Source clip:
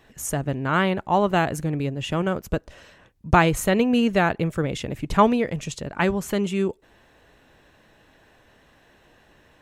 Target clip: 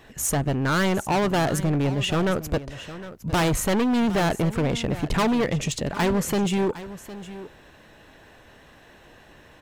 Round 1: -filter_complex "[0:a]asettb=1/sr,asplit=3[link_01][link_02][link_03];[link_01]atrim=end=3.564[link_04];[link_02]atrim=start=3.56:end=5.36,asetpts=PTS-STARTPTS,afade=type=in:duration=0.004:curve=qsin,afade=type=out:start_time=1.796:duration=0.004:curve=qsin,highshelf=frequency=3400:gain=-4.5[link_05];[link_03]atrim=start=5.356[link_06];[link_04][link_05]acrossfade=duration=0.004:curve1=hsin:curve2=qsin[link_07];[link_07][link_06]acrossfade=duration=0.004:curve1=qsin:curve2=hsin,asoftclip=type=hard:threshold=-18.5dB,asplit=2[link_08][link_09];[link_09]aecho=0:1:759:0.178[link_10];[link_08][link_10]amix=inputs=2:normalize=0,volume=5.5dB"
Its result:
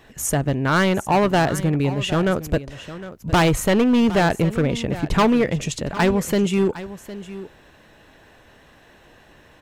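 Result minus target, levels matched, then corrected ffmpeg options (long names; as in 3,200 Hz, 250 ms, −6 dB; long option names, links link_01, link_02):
hard clipping: distortion −4 dB
-filter_complex "[0:a]asettb=1/sr,asplit=3[link_01][link_02][link_03];[link_01]atrim=end=3.564[link_04];[link_02]atrim=start=3.56:end=5.36,asetpts=PTS-STARTPTS,afade=type=in:duration=0.004:curve=qsin,afade=type=out:start_time=1.796:duration=0.004:curve=qsin,highshelf=frequency=3400:gain=-4.5[link_05];[link_03]atrim=start=5.356[link_06];[link_04][link_05]acrossfade=duration=0.004:curve1=hsin:curve2=qsin[link_07];[link_07][link_06]acrossfade=duration=0.004:curve1=qsin:curve2=hsin,asoftclip=type=hard:threshold=-25dB,asplit=2[link_08][link_09];[link_09]aecho=0:1:759:0.178[link_10];[link_08][link_10]amix=inputs=2:normalize=0,volume=5.5dB"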